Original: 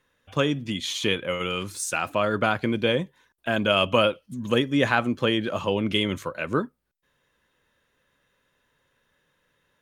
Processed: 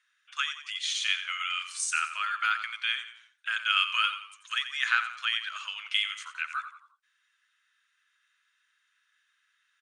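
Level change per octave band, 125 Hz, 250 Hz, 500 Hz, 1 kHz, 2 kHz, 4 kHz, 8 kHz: under -40 dB, under -40 dB, under -40 dB, -4.5 dB, 0.0 dB, -0.5 dB, -0.5 dB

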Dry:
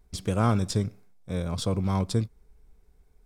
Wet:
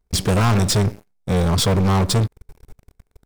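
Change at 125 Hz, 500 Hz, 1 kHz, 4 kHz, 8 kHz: +9.0 dB, +9.0 dB, +9.0 dB, +14.0 dB, +14.0 dB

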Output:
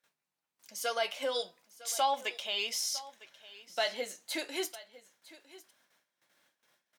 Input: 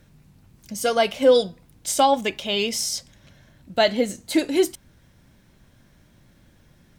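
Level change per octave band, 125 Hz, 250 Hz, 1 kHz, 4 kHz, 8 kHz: under -25 dB, -22.0 dB, -10.5 dB, -8.0 dB, -8.5 dB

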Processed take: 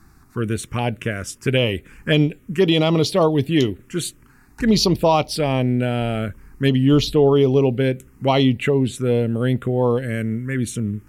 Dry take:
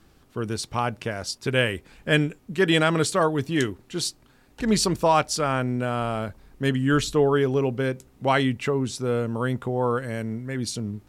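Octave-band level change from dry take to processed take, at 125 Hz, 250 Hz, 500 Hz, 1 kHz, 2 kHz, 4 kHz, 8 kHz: +7.0 dB, +6.5 dB, +5.0 dB, +0.5 dB, -0.5 dB, +4.5 dB, -0.5 dB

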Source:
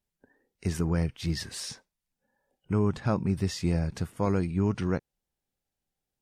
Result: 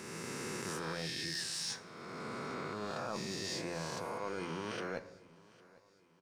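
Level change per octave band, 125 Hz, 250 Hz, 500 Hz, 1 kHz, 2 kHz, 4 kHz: -18.5 dB, -14.0 dB, -7.5 dB, -3.0 dB, +0.5 dB, +1.0 dB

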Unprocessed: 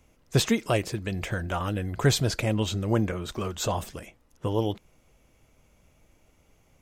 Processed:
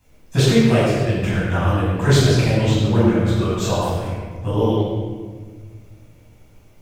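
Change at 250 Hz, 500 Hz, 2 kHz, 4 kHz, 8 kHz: +10.5 dB, +10.0 dB, +7.5 dB, +6.0 dB, +3.5 dB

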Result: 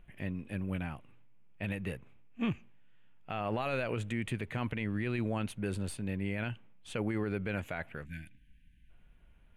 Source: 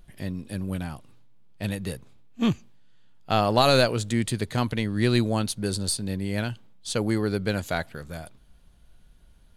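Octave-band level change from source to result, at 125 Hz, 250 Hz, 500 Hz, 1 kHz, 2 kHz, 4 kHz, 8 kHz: -9.0 dB, -9.0 dB, -11.5 dB, -13.0 dB, -7.0 dB, -18.5 dB, -18.0 dB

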